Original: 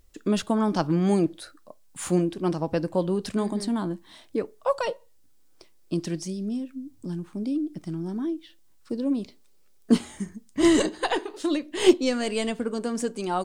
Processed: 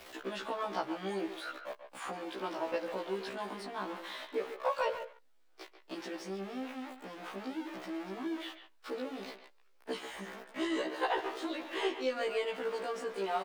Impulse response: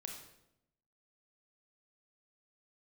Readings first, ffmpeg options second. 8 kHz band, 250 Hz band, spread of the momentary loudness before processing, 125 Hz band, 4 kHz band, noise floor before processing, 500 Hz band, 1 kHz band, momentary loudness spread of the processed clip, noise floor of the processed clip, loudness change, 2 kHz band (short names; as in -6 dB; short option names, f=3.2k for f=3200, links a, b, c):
-16.5 dB, -16.0 dB, 14 LU, under -20 dB, -8.0 dB, -55 dBFS, -9.0 dB, -4.5 dB, 12 LU, -63 dBFS, -11.5 dB, -4.0 dB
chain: -filter_complex "[0:a]aeval=exprs='val(0)+0.5*0.0224*sgn(val(0))':c=same,acrossover=split=110|1900[a][b][c];[a]acompressor=threshold=-47dB:ratio=4[d];[b]acompressor=threshold=-27dB:ratio=4[e];[c]acompressor=threshold=-39dB:ratio=4[f];[d][e][f]amix=inputs=3:normalize=0,acrossover=split=380 3800:gain=0.0708 1 0.178[g][h][i];[g][h][i]amix=inputs=3:normalize=0,asplit=2[j][k];[k]adelay=140,highpass=300,lowpass=3.4k,asoftclip=type=hard:threshold=-26dB,volume=-9dB[l];[j][l]amix=inputs=2:normalize=0,afftfilt=real='re*1.73*eq(mod(b,3),0)':imag='im*1.73*eq(mod(b,3),0)':win_size=2048:overlap=0.75,volume=1.5dB"